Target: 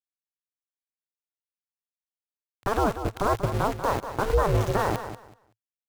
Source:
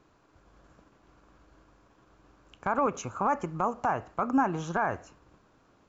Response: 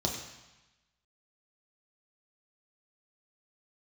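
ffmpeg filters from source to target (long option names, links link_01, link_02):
-af "tiltshelf=frequency=1300:gain=6.5,aeval=exprs='val(0)*gte(abs(val(0)),0.0316)':channel_layout=same,alimiter=limit=-17dB:level=0:latency=1:release=123,aeval=exprs='val(0)*sin(2*PI*210*n/s)':channel_layout=same,areverse,acompressor=mode=upward:threshold=-33dB:ratio=2.5,areverse,equalizer=frequency=110:width_type=o:width=0.53:gain=11,aecho=1:1:189|378|567:0.299|0.0597|0.0119,volume=5dB"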